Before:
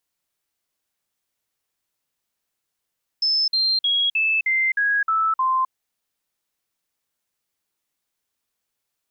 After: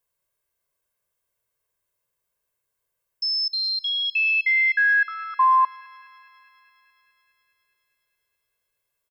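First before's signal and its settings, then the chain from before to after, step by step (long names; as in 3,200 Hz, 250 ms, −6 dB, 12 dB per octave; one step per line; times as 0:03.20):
stepped sweep 5,250 Hz down, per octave 3, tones 8, 0.26 s, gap 0.05 s −17 dBFS
parametric band 4,400 Hz −9 dB 1.8 octaves
comb filter 1.9 ms, depth 80%
feedback echo with a high-pass in the loop 208 ms, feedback 80%, high-pass 890 Hz, level −24 dB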